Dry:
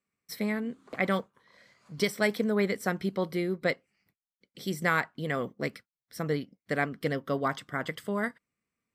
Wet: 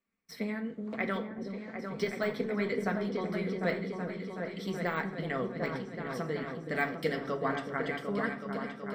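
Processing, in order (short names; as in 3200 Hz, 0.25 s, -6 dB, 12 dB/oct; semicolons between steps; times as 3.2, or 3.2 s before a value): de-esser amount 85%; 6.75–7.21 high shelf 3400 Hz +12 dB; harmonic-percussive split harmonic -5 dB; bell 12000 Hz -13 dB 1.4 oct; in parallel at 0 dB: compressor, threshold -44 dBFS, peak gain reduction 19 dB; on the sum: flange 0.23 Hz, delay 3.2 ms, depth 9.6 ms, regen -47%; repeats that get brighter 0.375 s, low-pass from 400 Hz, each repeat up 2 oct, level -3 dB; on a send at -7 dB: reverb RT60 0.65 s, pre-delay 4 ms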